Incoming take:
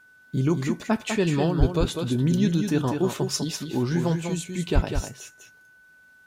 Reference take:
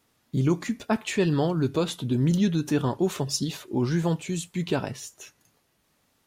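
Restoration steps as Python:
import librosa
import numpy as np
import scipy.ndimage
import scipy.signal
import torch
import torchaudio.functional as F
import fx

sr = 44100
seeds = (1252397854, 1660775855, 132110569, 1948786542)

y = fx.notch(x, sr, hz=1500.0, q=30.0)
y = fx.fix_deplosive(y, sr, at_s=(1.59, 4.74))
y = fx.fix_echo_inverse(y, sr, delay_ms=199, level_db=-6.0)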